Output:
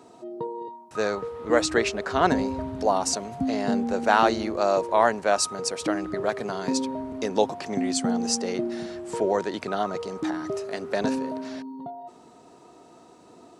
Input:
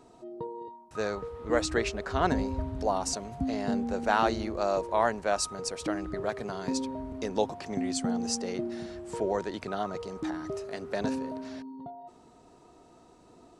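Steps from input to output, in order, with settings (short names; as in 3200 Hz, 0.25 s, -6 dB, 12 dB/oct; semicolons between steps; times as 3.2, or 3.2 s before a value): Bessel high-pass 160 Hz, order 2; gain +6 dB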